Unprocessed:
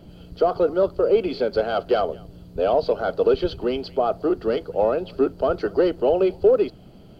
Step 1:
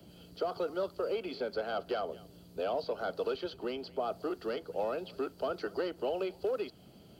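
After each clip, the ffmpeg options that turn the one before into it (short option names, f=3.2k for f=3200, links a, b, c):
-filter_complex "[0:a]highpass=52,highshelf=f=3.7k:g=11,acrossover=split=170|340|680|1900[a][b][c][d][e];[a]acompressor=threshold=-52dB:ratio=4[f];[b]acompressor=threshold=-33dB:ratio=4[g];[c]acompressor=threshold=-32dB:ratio=4[h];[d]acompressor=threshold=-27dB:ratio=4[i];[e]acompressor=threshold=-40dB:ratio=4[j];[f][g][h][i][j]amix=inputs=5:normalize=0,volume=-8.5dB"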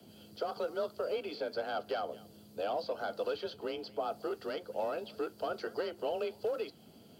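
-af "highshelf=f=5.2k:g=4.5,flanger=delay=4.4:depth=1.6:regen=-80:speed=1.7:shape=triangular,afreqshift=33,volume=3dB"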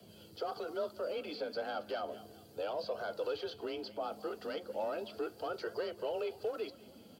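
-filter_complex "[0:a]asplit=2[a][b];[b]alimiter=level_in=9.5dB:limit=-24dB:level=0:latency=1:release=16,volume=-9.5dB,volume=1dB[c];[a][c]amix=inputs=2:normalize=0,aecho=1:1:196|392|588|784:0.1|0.051|0.026|0.0133,flanger=delay=1.7:depth=2.4:regen=-41:speed=0.34:shape=triangular,volume=-2.5dB"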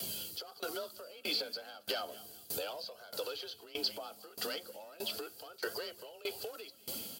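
-af "acompressor=threshold=-49dB:ratio=2.5,crystalizer=i=9.5:c=0,aeval=exprs='val(0)*pow(10,-21*if(lt(mod(1.6*n/s,1),2*abs(1.6)/1000),1-mod(1.6*n/s,1)/(2*abs(1.6)/1000),(mod(1.6*n/s,1)-2*abs(1.6)/1000)/(1-2*abs(1.6)/1000))/20)':c=same,volume=8.5dB"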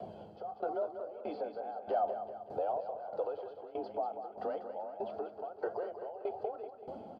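-filter_complex "[0:a]lowpass=f=760:t=q:w=4.9,asplit=2[a][b];[b]aecho=0:1:191|382|573|764|955:0.335|0.161|0.0772|0.037|0.0178[c];[a][c]amix=inputs=2:normalize=0"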